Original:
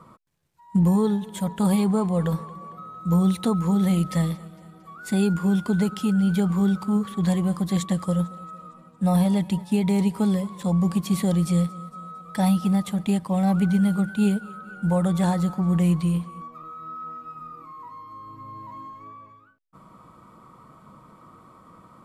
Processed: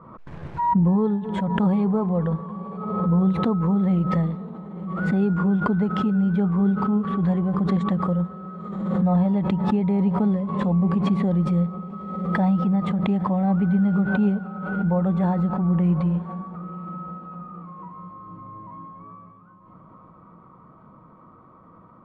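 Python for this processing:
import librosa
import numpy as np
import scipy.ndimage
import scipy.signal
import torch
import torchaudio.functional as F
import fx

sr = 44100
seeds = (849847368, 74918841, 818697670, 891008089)

y = scipy.signal.sosfilt(scipy.signal.butter(2, 1400.0, 'lowpass', fs=sr, output='sos'), x)
y = fx.echo_diffused(y, sr, ms=987, feedback_pct=47, wet_db=-15.5)
y = fx.pre_swell(y, sr, db_per_s=41.0)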